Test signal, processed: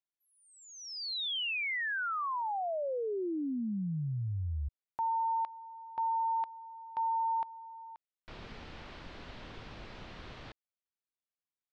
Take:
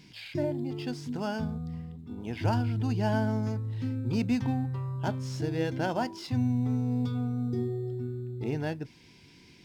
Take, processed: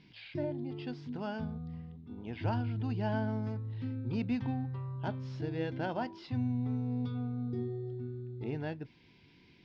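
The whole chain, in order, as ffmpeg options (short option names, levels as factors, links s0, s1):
-af "lowpass=f=4200:w=0.5412,lowpass=f=4200:w=1.3066,volume=0.531"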